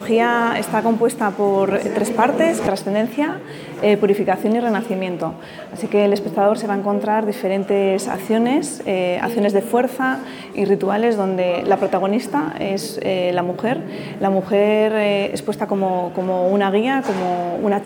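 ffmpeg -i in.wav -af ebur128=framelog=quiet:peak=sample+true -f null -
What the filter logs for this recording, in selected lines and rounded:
Integrated loudness:
  I:         -19.0 LUFS
  Threshold: -29.1 LUFS
Loudness range:
  LRA:         1.5 LU
  Threshold: -39.2 LUFS
  LRA low:   -19.9 LUFS
  LRA high:  -18.5 LUFS
Sample peak:
  Peak:       -2.0 dBFS
True peak:
  Peak:       -2.0 dBFS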